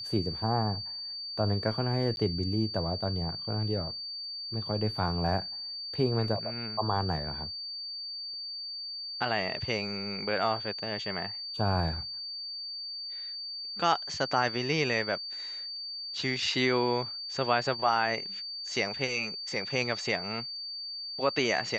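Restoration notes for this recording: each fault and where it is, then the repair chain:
tone 4600 Hz -36 dBFS
2.16–2.17 gap 11 ms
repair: notch 4600 Hz, Q 30; interpolate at 2.16, 11 ms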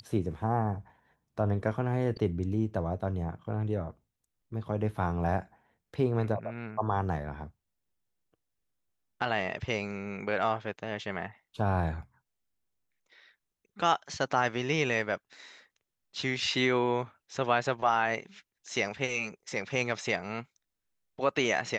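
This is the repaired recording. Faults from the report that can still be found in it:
none

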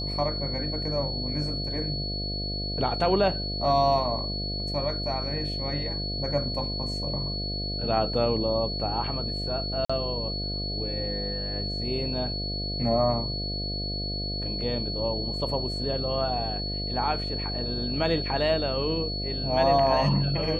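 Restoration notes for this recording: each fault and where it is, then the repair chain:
buzz 50 Hz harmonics 14 -33 dBFS
tone 4400 Hz -32 dBFS
9.85–9.89 gap 45 ms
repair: de-hum 50 Hz, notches 14; notch 4400 Hz, Q 30; interpolate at 9.85, 45 ms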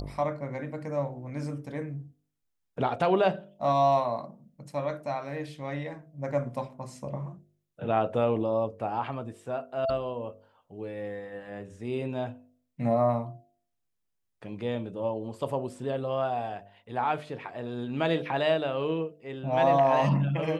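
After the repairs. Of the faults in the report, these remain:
none

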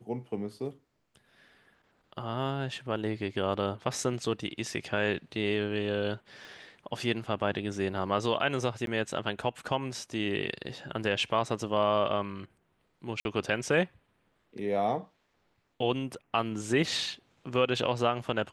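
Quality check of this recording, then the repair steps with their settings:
6.45 pop
8.86–8.87 gap 12 ms
13.2–13.25 gap 51 ms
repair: de-click; interpolate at 8.86, 12 ms; interpolate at 13.2, 51 ms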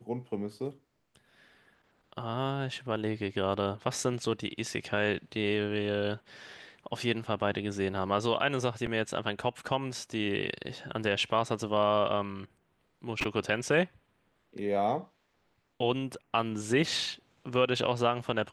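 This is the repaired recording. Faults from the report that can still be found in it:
none

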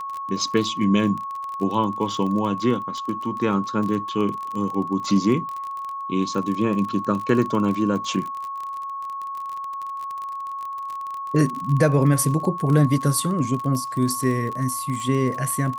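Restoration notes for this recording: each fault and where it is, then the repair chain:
crackle 34/s -27 dBFS
tone 1100 Hz -28 dBFS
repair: de-click; notch 1100 Hz, Q 30

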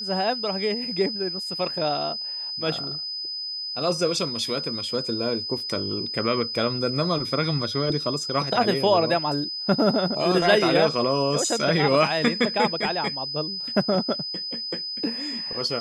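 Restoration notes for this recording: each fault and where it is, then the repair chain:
tone 5000 Hz -29 dBFS
5.6 gap 2.2 ms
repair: notch 5000 Hz, Q 30; interpolate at 5.6, 2.2 ms

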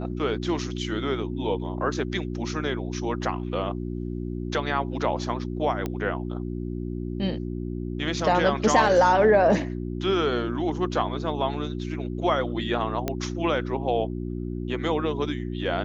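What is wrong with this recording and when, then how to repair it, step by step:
hum 60 Hz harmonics 6 -31 dBFS
5.86 pop -16 dBFS
13.08 pop -12 dBFS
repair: de-click; de-hum 60 Hz, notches 6

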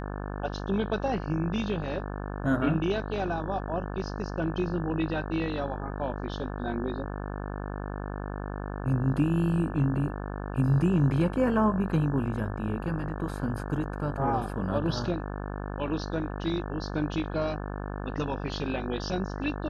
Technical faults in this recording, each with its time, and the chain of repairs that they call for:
buzz 50 Hz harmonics 35 -35 dBFS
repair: de-hum 50 Hz, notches 35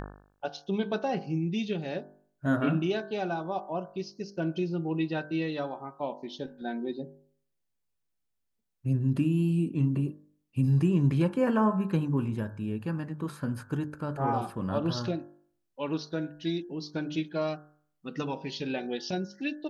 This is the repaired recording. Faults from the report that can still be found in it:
none

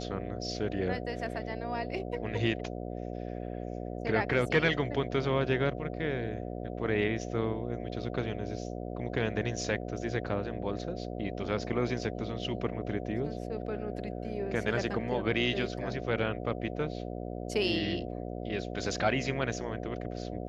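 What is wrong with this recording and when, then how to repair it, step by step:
buzz 60 Hz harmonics 12 -38 dBFS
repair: de-hum 60 Hz, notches 12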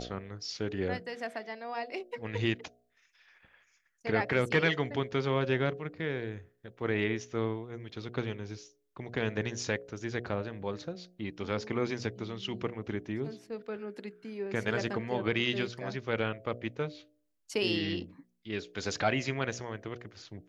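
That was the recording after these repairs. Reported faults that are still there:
none

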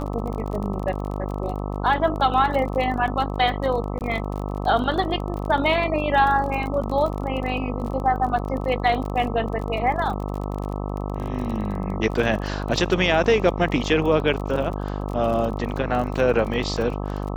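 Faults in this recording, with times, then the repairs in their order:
buzz 50 Hz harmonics 26 -28 dBFS
crackle 32/s -29 dBFS
3.99–4.01 gap 18 ms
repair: de-click; de-hum 50 Hz, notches 26; interpolate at 3.99, 18 ms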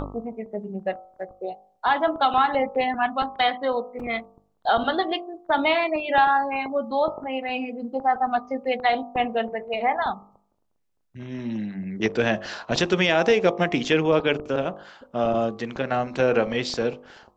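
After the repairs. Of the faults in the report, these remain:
none

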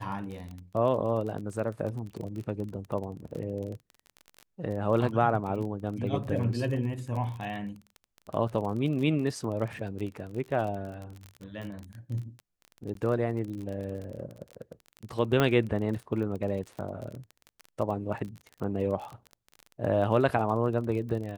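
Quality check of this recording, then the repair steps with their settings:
crackle 30/s -35 dBFS
12.94–12.95 gap 13 ms
15.4 pop -11 dBFS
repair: de-click; interpolate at 12.94, 13 ms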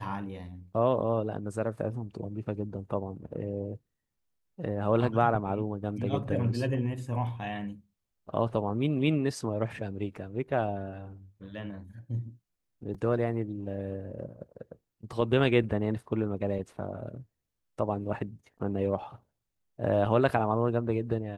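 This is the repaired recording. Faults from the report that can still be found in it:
none

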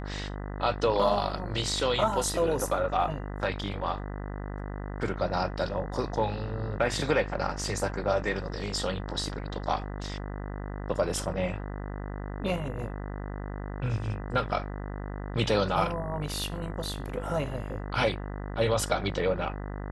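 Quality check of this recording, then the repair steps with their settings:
buzz 50 Hz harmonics 40 -36 dBFS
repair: de-hum 50 Hz, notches 40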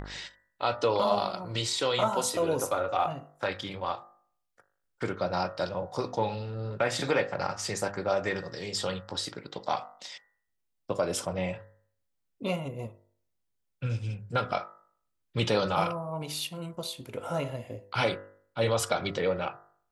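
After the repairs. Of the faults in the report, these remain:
none

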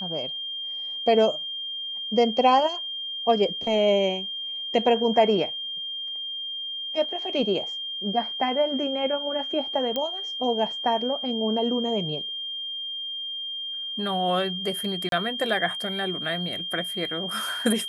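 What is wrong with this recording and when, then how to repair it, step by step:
tone 3200 Hz -30 dBFS
9.96 pop -14 dBFS
15.09–15.12 gap 32 ms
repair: de-click; notch 3200 Hz, Q 30; interpolate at 15.09, 32 ms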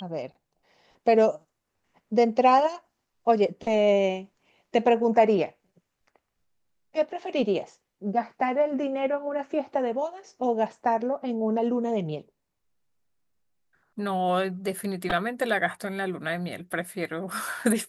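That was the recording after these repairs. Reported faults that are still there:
none

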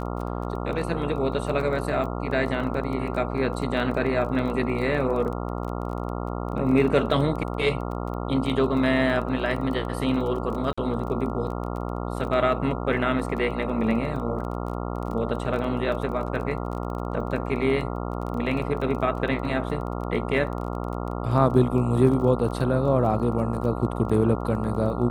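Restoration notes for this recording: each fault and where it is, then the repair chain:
buzz 60 Hz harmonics 23 -30 dBFS
crackle 20/s -32 dBFS
10.73–10.78 gap 45 ms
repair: de-click; de-hum 60 Hz, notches 23; interpolate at 10.73, 45 ms

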